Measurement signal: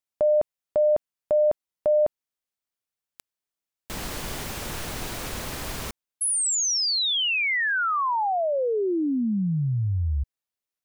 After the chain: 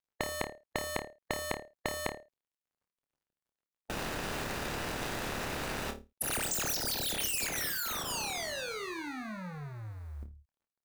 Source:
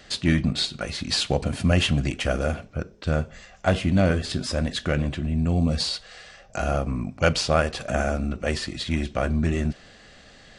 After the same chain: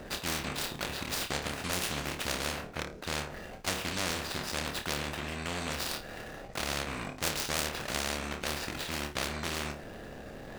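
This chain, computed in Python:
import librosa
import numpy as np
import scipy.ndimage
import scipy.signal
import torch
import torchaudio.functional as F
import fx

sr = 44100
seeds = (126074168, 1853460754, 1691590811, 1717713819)

y = scipy.signal.medfilt(x, 41)
y = fx.room_flutter(y, sr, wall_m=4.7, rt60_s=0.22)
y = fx.spectral_comp(y, sr, ratio=4.0)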